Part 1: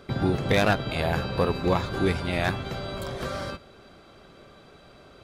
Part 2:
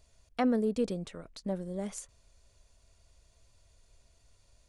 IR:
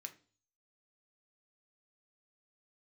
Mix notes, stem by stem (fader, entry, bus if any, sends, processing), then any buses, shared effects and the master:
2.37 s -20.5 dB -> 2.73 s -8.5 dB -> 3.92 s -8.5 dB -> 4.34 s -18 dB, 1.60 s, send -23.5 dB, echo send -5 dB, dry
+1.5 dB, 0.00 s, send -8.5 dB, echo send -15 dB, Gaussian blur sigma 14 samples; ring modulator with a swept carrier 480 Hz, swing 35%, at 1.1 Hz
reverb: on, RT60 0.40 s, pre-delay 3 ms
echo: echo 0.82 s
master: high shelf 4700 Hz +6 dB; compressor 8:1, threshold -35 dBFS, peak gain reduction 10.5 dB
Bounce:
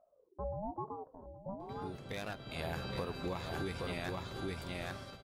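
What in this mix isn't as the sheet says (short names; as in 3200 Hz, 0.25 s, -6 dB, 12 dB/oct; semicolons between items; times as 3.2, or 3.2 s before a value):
stem 2 +1.5 dB -> -5.5 dB; reverb return +7.0 dB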